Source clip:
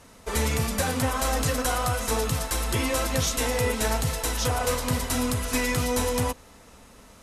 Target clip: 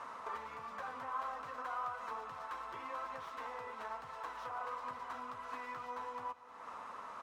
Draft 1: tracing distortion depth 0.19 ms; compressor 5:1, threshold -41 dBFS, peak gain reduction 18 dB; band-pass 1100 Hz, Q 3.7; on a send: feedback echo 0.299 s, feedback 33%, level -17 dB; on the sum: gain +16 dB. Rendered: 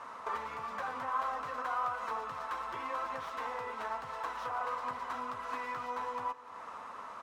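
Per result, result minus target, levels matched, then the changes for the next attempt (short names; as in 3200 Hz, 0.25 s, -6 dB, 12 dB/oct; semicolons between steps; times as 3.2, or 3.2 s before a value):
echo 0.224 s early; compressor: peak gain reduction -6 dB
change: feedback echo 0.523 s, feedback 33%, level -17 dB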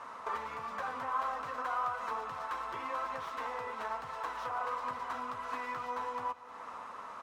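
compressor: peak gain reduction -6 dB
change: compressor 5:1, threshold -48.5 dBFS, peak gain reduction 24 dB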